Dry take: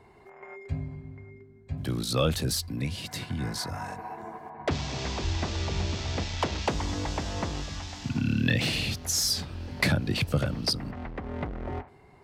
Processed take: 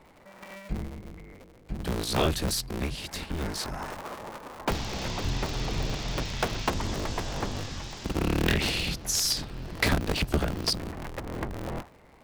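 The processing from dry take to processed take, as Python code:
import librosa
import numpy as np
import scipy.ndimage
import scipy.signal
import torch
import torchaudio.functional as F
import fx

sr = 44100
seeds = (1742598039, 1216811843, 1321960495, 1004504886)

y = fx.cycle_switch(x, sr, every=2, mode='inverted')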